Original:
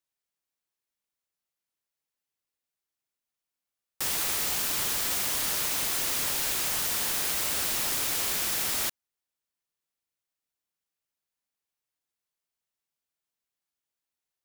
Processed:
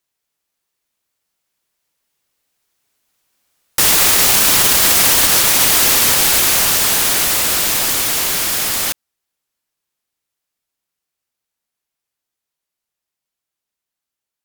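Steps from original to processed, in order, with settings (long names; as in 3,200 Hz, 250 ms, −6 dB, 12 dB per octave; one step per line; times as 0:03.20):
source passing by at 0:04.02, 23 m/s, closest 23 metres
boost into a limiter +25 dB
level −1 dB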